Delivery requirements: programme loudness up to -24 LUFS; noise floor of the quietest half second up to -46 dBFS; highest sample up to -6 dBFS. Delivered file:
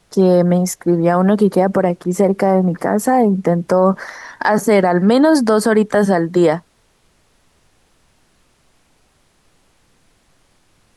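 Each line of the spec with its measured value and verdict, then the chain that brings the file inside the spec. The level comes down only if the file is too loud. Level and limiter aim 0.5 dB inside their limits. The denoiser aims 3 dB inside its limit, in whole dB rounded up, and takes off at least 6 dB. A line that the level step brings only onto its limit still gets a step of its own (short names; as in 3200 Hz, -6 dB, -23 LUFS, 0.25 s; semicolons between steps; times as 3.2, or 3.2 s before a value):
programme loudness -15.0 LUFS: fail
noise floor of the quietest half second -58 dBFS: OK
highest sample -3.5 dBFS: fail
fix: gain -9.5 dB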